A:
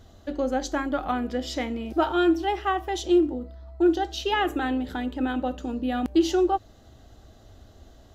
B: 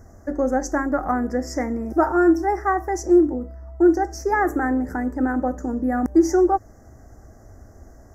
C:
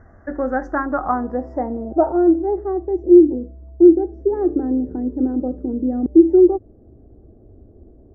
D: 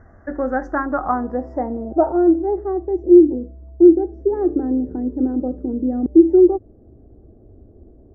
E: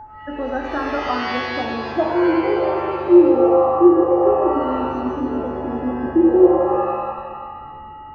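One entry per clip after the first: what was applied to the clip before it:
elliptic band-stop filter 1,900–5,500 Hz, stop band 50 dB; level +5 dB
low-pass filter sweep 1,700 Hz → 390 Hz, 0:00.39–0:02.83; level −1.5 dB
no processing that can be heard
steady tone 860 Hz −31 dBFS; reverb with rising layers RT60 1.6 s, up +7 semitones, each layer −2 dB, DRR 1.5 dB; level −4.5 dB

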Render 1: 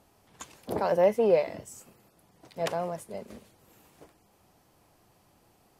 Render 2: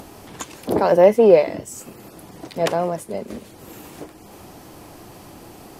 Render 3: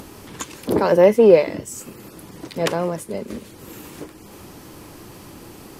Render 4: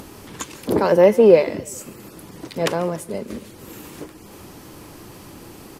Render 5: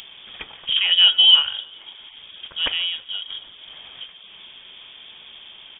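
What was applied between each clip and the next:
parametric band 310 Hz +6 dB 0.82 octaves; in parallel at +0.5 dB: upward compression, threshold −31 dBFS; on the sum: level +2.5 dB
parametric band 710 Hz −8.5 dB 0.47 octaves; level +2 dB
repeating echo 142 ms, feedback 48%, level −22 dB
voice inversion scrambler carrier 3,500 Hz; level −2 dB

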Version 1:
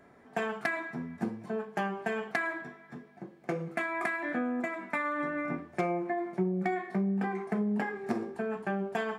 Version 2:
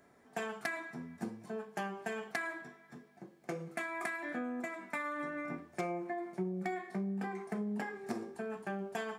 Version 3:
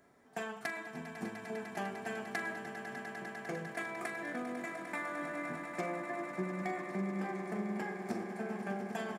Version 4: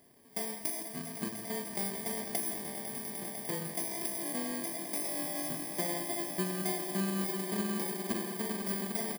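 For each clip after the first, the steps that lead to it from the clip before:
bass and treble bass −1 dB, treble +10 dB; level −6.5 dB
double-tracking delay 42 ms −12.5 dB; on a send: echo that builds up and dies away 100 ms, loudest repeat 8, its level −13.5 dB; on the sum: level −1.5 dB
samples in bit-reversed order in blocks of 32 samples; single-tap delay 165 ms −13 dB; level +3.5 dB

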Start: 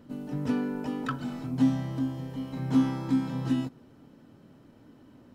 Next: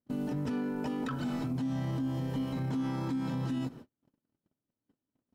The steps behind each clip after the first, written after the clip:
noise gate −48 dBFS, range −42 dB
downward compressor, threshold −29 dBFS, peak gain reduction 11 dB
brickwall limiter −32 dBFS, peak gain reduction 11.5 dB
level +5.5 dB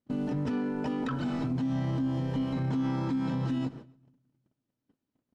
high-frequency loss of the air 71 metres
repeating echo 136 ms, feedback 34%, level −24 dB
on a send at −23 dB: convolution reverb RT60 1.1 s, pre-delay 6 ms
on the sum: level +3 dB

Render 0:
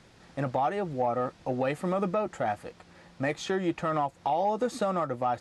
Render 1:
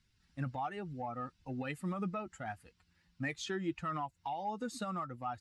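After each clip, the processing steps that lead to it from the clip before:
spectral dynamics exaggerated over time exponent 1.5
parametric band 560 Hz −13 dB 0.98 octaves
level −2.5 dB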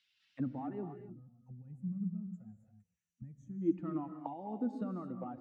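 envelope filter 280–3,200 Hz, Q 2.7, down, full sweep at −38.5 dBFS
gain on a spectral selection 0:00.94–0:03.62, 230–5,700 Hz −28 dB
reverb whose tail is shaped and stops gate 300 ms rising, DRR 7 dB
level +8.5 dB

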